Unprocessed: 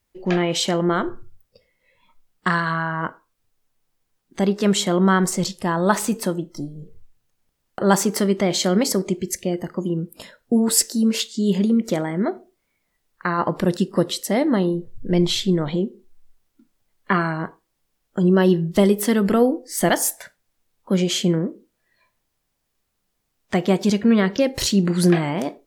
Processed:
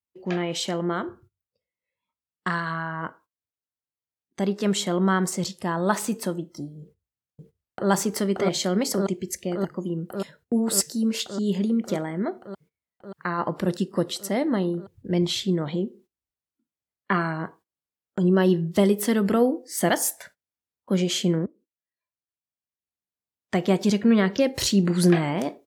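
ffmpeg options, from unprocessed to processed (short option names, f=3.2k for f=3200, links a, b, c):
-filter_complex "[0:a]asplit=2[a][b];[b]afade=t=in:st=6.8:d=0.01,afade=t=out:st=7.9:d=0.01,aecho=0:1:580|1160|1740|2320|2900|3480|4060|4640|5220|5800|6380|6960:0.944061|0.755249|0.604199|0.483359|0.386687|0.30935|0.24748|0.197984|0.158387|0.12671|0.101368|0.0810942[c];[a][c]amix=inputs=2:normalize=0,asplit=2[d][e];[d]atrim=end=21.46,asetpts=PTS-STARTPTS,afade=t=out:st=21.456:d=0.004:c=hsin:silence=0.112202[f];[e]atrim=start=21.46,asetpts=PTS-STARTPTS,afade=t=in:d=2.29:silence=0.112202[g];[f][g]concat=n=2:v=0:a=1,highpass=f=57:w=0.5412,highpass=f=57:w=1.3066,agate=range=-18dB:threshold=-46dB:ratio=16:detection=peak,dynaudnorm=f=560:g=17:m=11.5dB,volume=-6.5dB"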